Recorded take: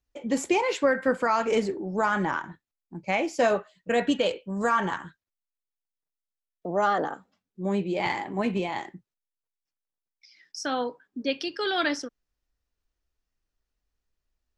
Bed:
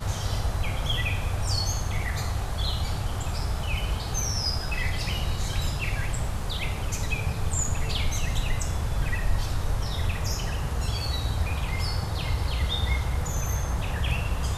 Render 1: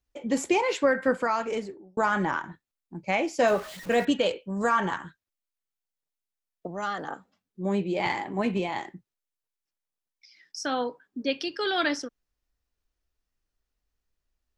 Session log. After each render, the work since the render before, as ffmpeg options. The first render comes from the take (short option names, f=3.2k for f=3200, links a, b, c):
-filter_complex "[0:a]asettb=1/sr,asplit=3[a][b][c];[a]atrim=end=3.474[d];[b]atrim=start=3.47:end=4.05,asetpts=PTS-STARTPTS,afade=t=in:d=0.004:c=qsin,afade=t=out:st=0.576:d=0.004:c=qsin,aeval=exprs='val(0)+0.5*0.0141*sgn(val(0))':c=same[e];[c]atrim=start=4.046[f];[d][e]acrossfade=d=0.004:c1=hsin:c2=qsin[g];[g][f]acrossfade=d=0.004:c1=qsin:c2=hsin,asettb=1/sr,asplit=3[h][i][j];[h]atrim=end=6.674[k];[i]atrim=start=6.67:end=7.08,asetpts=PTS-STARTPTS,afade=t=in:d=0.004:c=qsin,afade=t=out:st=0.406:d=0.004:c=qsin,equalizer=f=550:w=0.55:g=-11.5[l];[j]atrim=start=7.076[m];[k][l]acrossfade=d=0.004:c1=hsin:c2=qsin[n];[n][m]acrossfade=d=0.004:c1=qsin:c2=hsin,asplit=2[o][p];[o]atrim=end=1.97,asetpts=PTS-STARTPTS,afade=t=out:st=1.11:d=0.86[q];[p]atrim=start=1.97,asetpts=PTS-STARTPTS,afade=t=in:d=0.004:c=hsin[r];[q][r]concat=n=2:v=0:a=1"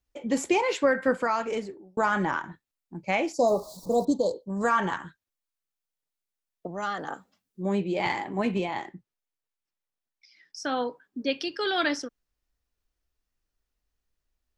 -filter_complex "[0:a]asplit=3[a][b][c];[a]afade=t=out:st=3.32:d=0.02[d];[b]asuperstop=centerf=2100:order=12:qfactor=0.71,afade=t=in:st=3.32:d=0.02,afade=t=out:st=4.48:d=0.02[e];[c]afade=t=in:st=4.48:d=0.02[f];[d][e][f]amix=inputs=3:normalize=0,asettb=1/sr,asplit=3[g][h][i];[g]atrim=end=7.074[j];[h]atrim=start=7.07:end=7.63,asetpts=PTS-STARTPTS,afade=t=in:d=0.004:c=qsin,afade=t=out:st=0.556:d=0.004:c=qsin,highshelf=f=4.1k:g=7.5[k];[i]atrim=start=7.626[l];[j][k]acrossfade=d=0.004:c1=hsin:c2=qsin[m];[m][l]acrossfade=d=0.004:c1=qsin:c2=hsin,asettb=1/sr,asplit=3[n][o][p];[n]atrim=end=8.654[q];[o]atrim=start=8.65:end=10.77,asetpts=PTS-STARTPTS,afade=t=in:d=0.004:c=qsin,afade=t=out:st=2.116:d=0.004:c=qsin,highshelf=f=5.1k:g=-6.5[r];[p]atrim=start=10.766[s];[q][r]acrossfade=d=0.004:c1=hsin:c2=qsin[t];[t][s]acrossfade=d=0.004:c1=qsin:c2=hsin"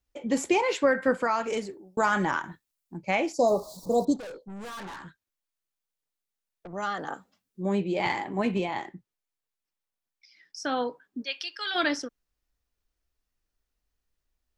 -filter_complex "[0:a]asettb=1/sr,asplit=3[a][b][c];[a]atrim=end=1.444[d];[b]atrim=start=1.44:end=2.98,asetpts=PTS-STARTPTS,afade=t=in:d=0.004:c=qsin,afade=t=out:st=1.536:d=0.004:c=qsin,highshelf=f=4.4k:g=8.5[e];[c]atrim=start=2.976[f];[d][e]acrossfade=d=0.004:c1=hsin:c2=qsin[g];[g][f]acrossfade=d=0.004:c1=qsin:c2=hsin,asettb=1/sr,asplit=3[h][i][j];[h]atrim=end=4.164[k];[i]atrim=start=4.16:end=6.73,asetpts=PTS-STARTPTS,afade=t=in:d=0.004:c=qsin,afade=t=out:st=2.566:d=0.004:c=qsin,aeval=exprs='(tanh(79.4*val(0)+0.1)-tanh(0.1))/79.4':c=same[l];[j]atrim=start=6.726[m];[k][l]acrossfade=d=0.004:c1=hsin:c2=qsin[n];[n][m]acrossfade=d=0.004:c1=qsin:c2=hsin,asplit=3[o][p][q];[o]afade=t=out:st=11.23:d=0.02[r];[p]highpass=1.2k,afade=t=in:st=11.23:d=0.02,afade=t=out:st=11.74:d=0.02[s];[q]afade=t=in:st=11.74:d=0.02[t];[r][s][t]amix=inputs=3:normalize=0"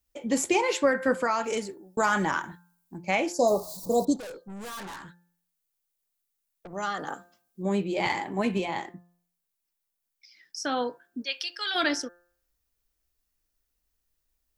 -af "highshelf=f=7.6k:g=12,bandreject=f=174.7:t=h:w=4,bandreject=f=349.4:t=h:w=4,bandreject=f=524.1:t=h:w=4,bandreject=f=698.8:t=h:w=4,bandreject=f=873.5:t=h:w=4,bandreject=f=1.0482k:t=h:w=4,bandreject=f=1.2229k:t=h:w=4,bandreject=f=1.3976k:t=h:w=4,bandreject=f=1.5723k:t=h:w=4,bandreject=f=1.747k:t=h:w=4"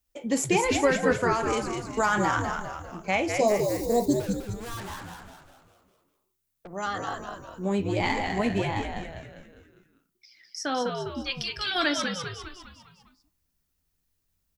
-filter_complex "[0:a]asplit=7[a][b][c][d][e][f][g];[b]adelay=201,afreqshift=-91,volume=-5dB[h];[c]adelay=402,afreqshift=-182,volume=-11dB[i];[d]adelay=603,afreqshift=-273,volume=-17dB[j];[e]adelay=804,afreqshift=-364,volume=-23.1dB[k];[f]adelay=1005,afreqshift=-455,volume=-29.1dB[l];[g]adelay=1206,afreqshift=-546,volume=-35.1dB[m];[a][h][i][j][k][l][m]amix=inputs=7:normalize=0"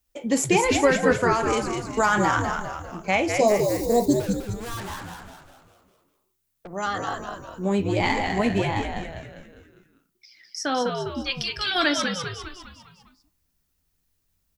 -af "volume=3.5dB"